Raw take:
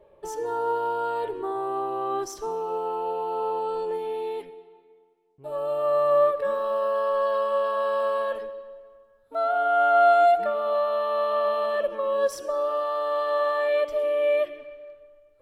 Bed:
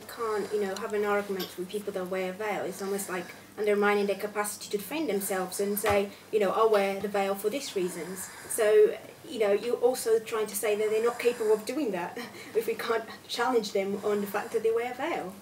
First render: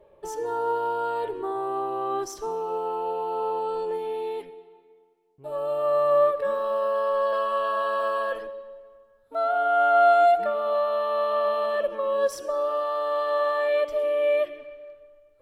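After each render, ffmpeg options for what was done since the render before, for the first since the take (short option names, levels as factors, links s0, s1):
-filter_complex "[0:a]asettb=1/sr,asplit=3[s0][s1][s2];[s0]atrim=end=7.324[s3];[s1]atrim=start=7.32:end=8.47,asetpts=PTS-STARTPTS,afade=t=in:d=0.004:c=qsin,afade=t=out:st=1.146:d=0.004:c=qsin,aecho=1:1:6.1:0.75,atrim=end_sample=50715[s4];[s2]atrim=start=8.466[s5];[s3][s4]acrossfade=d=0.004:c1=hsin:c2=qsin[s6];[s6][s5]acrossfade=d=0.004:c1=qsin:c2=hsin"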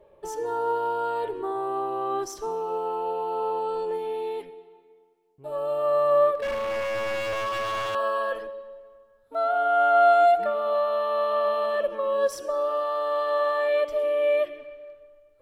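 -filter_complex "[0:a]asettb=1/sr,asplit=3[s0][s1][s2];[s0]atrim=end=6.354[s3];[s1]atrim=start=6.35:end=7.95,asetpts=PTS-STARTPTS,afade=t=in:d=0.004:c=qsin,afade=t=out:st=1.596:d=0.004:c=qsin,aeval=exprs='0.0668*(abs(mod(val(0)/0.0668+3,4)-2)-1)':c=same[s4];[s2]atrim=start=7.946[s5];[s3][s4]acrossfade=d=0.004:c1=hsin:c2=qsin[s6];[s6][s5]acrossfade=d=0.004:c1=qsin:c2=hsin"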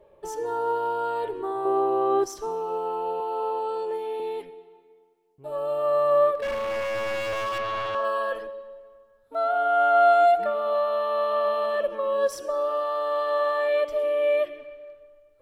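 -filter_complex "[0:a]asettb=1/sr,asplit=3[s0][s1][s2];[s0]atrim=end=1.654[s3];[s1]atrim=start=1.65:end=2.24,asetpts=PTS-STARTPTS,afade=t=in:d=0.004:c=qsin,afade=t=out:st=0.586:d=0.004:c=qsin,equalizer=f=440:w=0.82:g=8[s4];[s2]atrim=start=2.236[s5];[s3][s4]acrossfade=d=0.004:c1=hsin:c2=qsin[s6];[s6][s5]acrossfade=d=0.004:c1=qsin:c2=hsin,asettb=1/sr,asplit=3[s7][s8][s9];[s7]atrim=end=3.204[s10];[s8]atrim=start=3.2:end=4.2,asetpts=PTS-STARTPTS,afade=t=in:d=0.004:c=qsin,afade=t=out:st=0.996:d=0.004:c=qsin,highpass=280[s11];[s9]atrim=start=4.196[s12];[s10][s11]acrossfade=d=0.004:c1=hsin:c2=qsin[s13];[s13][s12]acrossfade=d=0.004:c1=qsin:c2=hsin,asettb=1/sr,asplit=3[s14][s15][s16];[s14]atrim=end=7.584[s17];[s15]atrim=start=7.58:end=8.05,asetpts=PTS-STARTPTS,afade=t=in:d=0.004:c=qsin,afade=t=out:st=0.466:d=0.004:c=qsin,adynamicsmooth=sensitivity=3:basefreq=3200[s18];[s16]atrim=start=8.046[s19];[s17][s18]acrossfade=d=0.004:c1=hsin:c2=qsin[s20];[s20][s19]acrossfade=d=0.004:c1=qsin:c2=hsin"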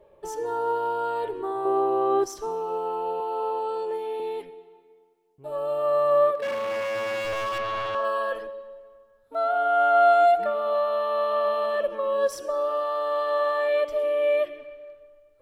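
-filter_complex "[0:a]asettb=1/sr,asplit=3[s0][s1][s2];[s0]atrim=end=6.304[s3];[s1]atrim=start=6.3:end=7.25,asetpts=PTS-STARTPTS,afade=t=in:d=0.004:c=qsin,afade=t=out:st=0.946:d=0.004:c=qsin,highpass=f=110:w=0.5412,highpass=f=110:w=1.3066[s4];[s2]atrim=start=7.246[s5];[s3][s4]acrossfade=d=0.004:c1=hsin:c2=qsin[s6];[s6][s5]acrossfade=d=0.004:c1=qsin:c2=hsin"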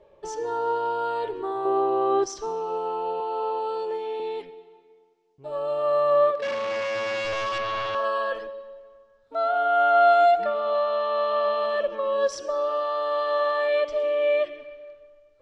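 -af "lowpass=f=6100:w=0.5412,lowpass=f=6100:w=1.3066,highshelf=f=3800:g=8"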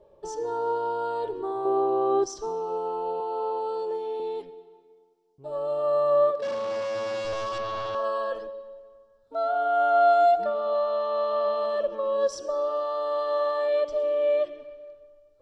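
-af "equalizer=f=2200:w=1.1:g=-12,bandreject=f=6500:w=26"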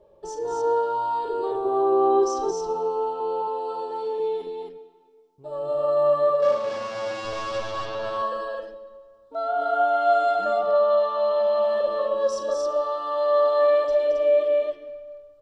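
-af "aecho=1:1:40.82|221.6|271.1:0.316|0.501|0.708"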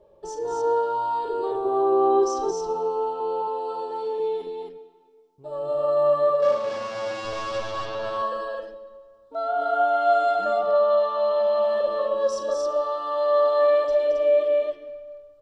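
-af anull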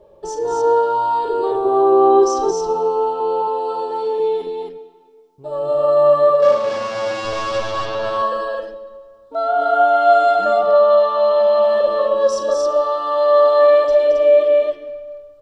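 -af "volume=2.37"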